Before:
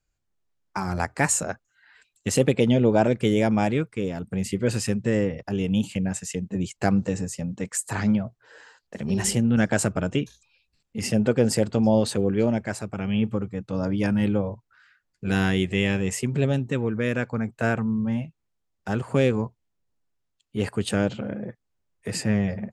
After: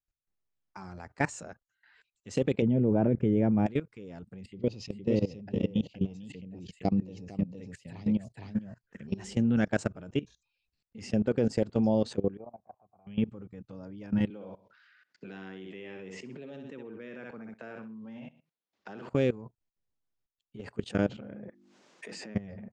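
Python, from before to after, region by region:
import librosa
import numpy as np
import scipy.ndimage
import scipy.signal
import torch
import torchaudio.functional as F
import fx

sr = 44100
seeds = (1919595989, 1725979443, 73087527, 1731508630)

y = fx.chain(x, sr, fx.moving_average(points=10),
    fx.low_shelf(hz=400.0, db=12.0), at=(2.62, 3.66))
y = fx.chain(y, sr, fx.env_phaser(low_hz=550.0, high_hz=1600.0, full_db=-24.0),
    fx.echo_single(ms=465, db=-3.0), at=(4.41, 9.07))
y = fx.chain(y, sr, fx.formant_cascade(vowel='a'),
    fx.tilt_shelf(db=4.0, hz=820.0), at=(12.37, 13.07))
y = fx.chain(y, sr, fx.bandpass_edges(low_hz=250.0, high_hz=4400.0),
    fx.echo_feedback(ms=63, feedback_pct=28, wet_db=-8),
    fx.band_squash(depth_pct=70), at=(14.3, 19.1))
y = fx.chain(y, sr, fx.highpass(hz=220.0, slope=24),
    fx.hum_notches(base_hz=50, count=7),
    fx.pre_swell(db_per_s=24.0), at=(21.48, 22.35))
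y = scipy.signal.sosfilt(scipy.signal.butter(4, 6700.0, 'lowpass', fs=sr, output='sos'), y)
y = fx.dynamic_eq(y, sr, hz=320.0, q=0.72, threshold_db=-30.0, ratio=4.0, max_db=4)
y = fx.level_steps(y, sr, step_db=19)
y = F.gain(torch.from_numpy(y), -5.5).numpy()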